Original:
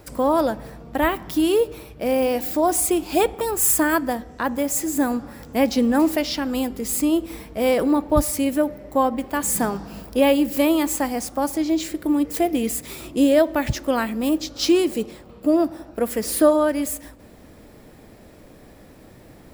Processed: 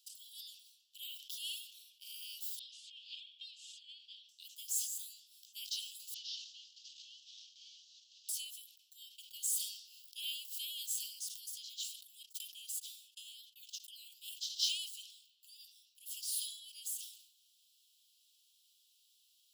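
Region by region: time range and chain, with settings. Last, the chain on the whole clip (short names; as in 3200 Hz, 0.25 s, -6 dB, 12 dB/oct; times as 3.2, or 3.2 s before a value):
2.59–4.29 LPF 3700 Hz 24 dB/oct + negative-ratio compressor -21 dBFS, ratio -0.5
6.14–8.29 CVSD 32 kbps + high shelf 4000 Hz +6.5 dB + compressor 3:1, threshold -32 dBFS
12.23–14.28 gate -28 dBFS, range -31 dB + compressor 4:1, threshold -22 dBFS
whole clip: steep high-pass 2900 Hz 96 dB/oct; high shelf 5100 Hz -8 dB; sustainer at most 80 dB/s; gain -5 dB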